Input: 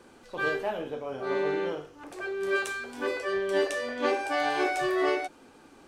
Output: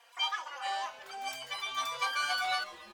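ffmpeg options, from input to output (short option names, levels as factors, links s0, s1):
-filter_complex "[0:a]highpass=520,highshelf=f=7200:g=-11.5,asplit=8[s0][s1][s2][s3][s4][s5][s6][s7];[s1]adelay=284,afreqshift=-65,volume=0.158[s8];[s2]adelay=568,afreqshift=-130,volume=0.101[s9];[s3]adelay=852,afreqshift=-195,volume=0.0646[s10];[s4]adelay=1136,afreqshift=-260,volume=0.0417[s11];[s5]adelay=1420,afreqshift=-325,volume=0.0266[s12];[s6]adelay=1704,afreqshift=-390,volume=0.017[s13];[s7]adelay=1988,afreqshift=-455,volume=0.0108[s14];[s0][s8][s9][s10][s11][s12][s13][s14]amix=inputs=8:normalize=0,asetrate=88200,aresample=44100,asplit=2[s15][s16];[s16]adelay=3.8,afreqshift=0.48[s17];[s15][s17]amix=inputs=2:normalize=1"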